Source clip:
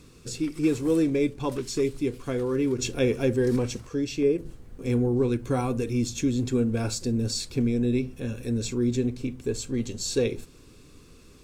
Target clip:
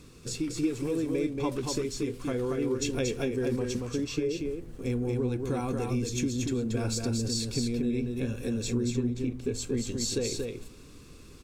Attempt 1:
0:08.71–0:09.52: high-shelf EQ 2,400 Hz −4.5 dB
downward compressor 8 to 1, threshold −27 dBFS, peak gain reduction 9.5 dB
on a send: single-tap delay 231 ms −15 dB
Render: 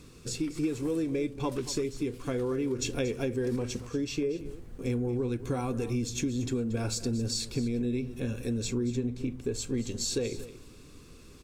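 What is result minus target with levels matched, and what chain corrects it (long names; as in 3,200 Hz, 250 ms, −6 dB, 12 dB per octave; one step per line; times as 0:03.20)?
echo-to-direct −11 dB
0:08.71–0:09.52: high-shelf EQ 2,400 Hz −4.5 dB
downward compressor 8 to 1, threshold −27 dBFS, peak gain reduction 9.5 dB
on a send: single-tap delay 231 ms −4 dB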